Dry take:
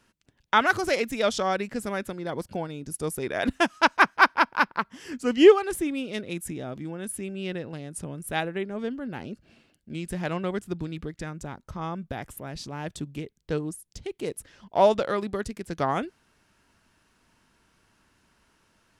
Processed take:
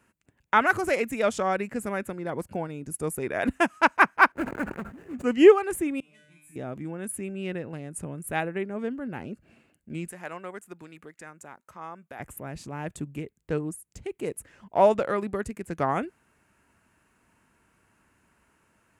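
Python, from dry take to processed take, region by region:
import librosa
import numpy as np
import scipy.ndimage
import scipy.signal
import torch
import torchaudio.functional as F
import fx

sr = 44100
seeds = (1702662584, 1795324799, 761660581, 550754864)

y = fx.chain(x, sr, fx.median_filter(points=41),
    fx.high_shelf(hz=8700.0, db=-6.5),
    fx.sustainer(db_per_s=95.0), at=(4.32, 5.24))
y = fx.chain(y, sr, fx.peak_eq(hz=470.0, db=-14.0, octaves=0.69),
    fx.comb_fb(f0_hz=150.0, decay_s=0.79, harmonics='all', damping=0.0, mix_pct=100), at=(6.0, 6.56))
y = fx.chain(y, sr, fx.highpass(hz=1200.0, slope=6),
    fx.dynamic_eq(hz=3100.0, q=0.93, threshold_db=-52.0, ratio=4.0, max_db=-6), at=(10.09, 12.2))
y = scipy.signal.sosfilt(scipy.signal.butter(2, 45.0, 'highpass', fs=sr, output='sos'), y)
y = fx.band_shelf(y, sr, hz=4300.0, db=-10.0, octaves=1.1)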